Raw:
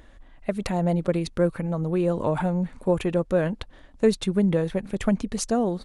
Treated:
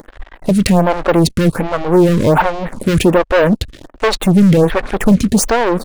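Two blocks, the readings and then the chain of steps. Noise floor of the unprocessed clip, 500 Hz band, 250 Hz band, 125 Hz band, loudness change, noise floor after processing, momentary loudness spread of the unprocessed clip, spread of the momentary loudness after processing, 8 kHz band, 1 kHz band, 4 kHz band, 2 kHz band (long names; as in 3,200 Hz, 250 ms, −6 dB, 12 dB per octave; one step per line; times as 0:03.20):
−51 dBFS, +10.5 dB, +12.0 dB, +11.5 dB, +12.0 dB, −48 dBFS, 7 LU, 8 LU, +14.0 dB, +15.5 dB, +14.5 dB, +16.5 dB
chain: leveller curve on the samples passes 5
phaser with staggered stages 1.3 Hz
level +4.5 dB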